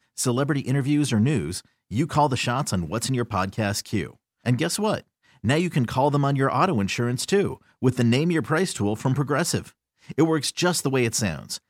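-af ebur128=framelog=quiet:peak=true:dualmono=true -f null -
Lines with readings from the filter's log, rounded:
Integrated loudness:
  I:         -20.7 LUFS
  Threshold: -30.9 LUFS
Loudness range:
  LRA:         2.9 LU
  Threshold: -41.0 LUFS
  LRA low:   -22.6 LUFS
  LRA high:  -19.7 LUFS
True peak:
  Peak:       -6.8 dBFS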